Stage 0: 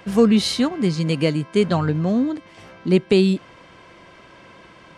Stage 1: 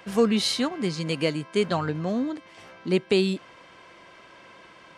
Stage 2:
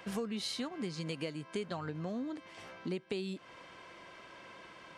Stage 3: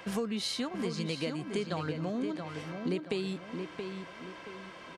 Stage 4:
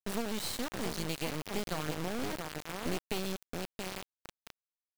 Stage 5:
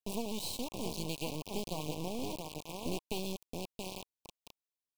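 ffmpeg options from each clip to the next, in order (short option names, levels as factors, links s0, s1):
-af "lowshelf=f=270:g=-10,volume=0.794"
-af "acompressor=threshold=0.0224:ratio=5,volume=0.708"
-filter_complex "[0:a]asplit=2[s0][s1];[s1]adelay=676,lowpass=f=3200:p=1,volume=0.501,asplit=2[s2][s3];[s3]adelay=676,lowpass=f=3200:p=1,volume=0.38,asplit=2[s4][s5];[s5]adelay=676,lowpass=f=3200:p=1,volume=0.38,asplit=2[s6][s7];[s7]adelay=676,lowpass=f=3200:p=1,volume=0.38,asplit=2[s8][s9];[s9]adelay=676,lowpass=f=3200:p=1,volume=0.38[s10];[s0][s2][s4][s6][s8][s10]amix=inputs=6:normalize=0,volume=1.58"
-af "acrusher=bits=3:dc=4:mix=0:aa=0.000001"
-af "asuperstop=centerf=1600:order=12:qfactor=1.2,volume=0.794"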